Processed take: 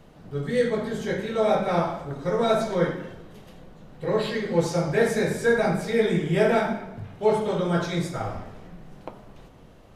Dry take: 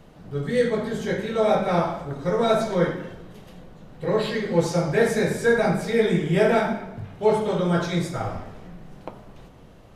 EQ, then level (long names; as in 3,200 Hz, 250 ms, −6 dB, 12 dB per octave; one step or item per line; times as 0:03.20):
mains-hum notches 60/120/180 Hz
−1.5 dB